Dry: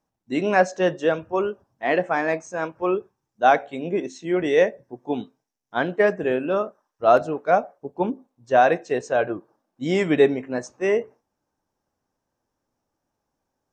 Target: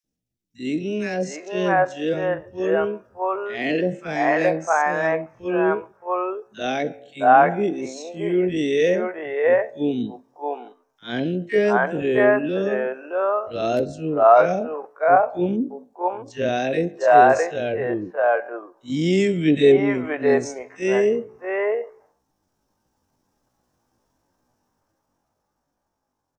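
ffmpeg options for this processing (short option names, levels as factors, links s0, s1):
-filter_complex "[0:a]dynaudnorm=f=190:g=13:m=4.47,atempo=0.52,acrossover=split=480|2100[s0][s1][s2];[s0]adelay=40[s3];[s1]adelay=660[s4];[s3][s4][s2]amix=inputs=3:normalize=0"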